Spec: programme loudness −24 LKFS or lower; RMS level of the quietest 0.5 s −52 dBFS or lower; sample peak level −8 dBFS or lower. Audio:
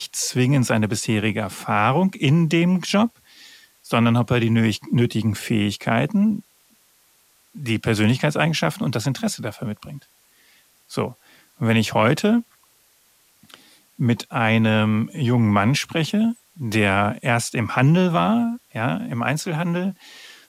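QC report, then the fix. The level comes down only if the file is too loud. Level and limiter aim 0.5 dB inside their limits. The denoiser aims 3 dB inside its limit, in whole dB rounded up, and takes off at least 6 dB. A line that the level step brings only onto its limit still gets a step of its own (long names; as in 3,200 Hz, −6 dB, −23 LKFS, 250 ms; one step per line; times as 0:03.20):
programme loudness −21.0 LKFS: out of spec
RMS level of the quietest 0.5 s −59 dBFS: in spec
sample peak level −4.5 dBFS: out of spec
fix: level −3.5 dB
brickwall limiter −8.5 dBFS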